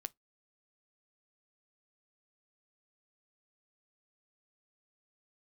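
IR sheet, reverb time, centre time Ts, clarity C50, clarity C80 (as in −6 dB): 0.15 s, 2 ms, 31.5 dB, 47.0 dB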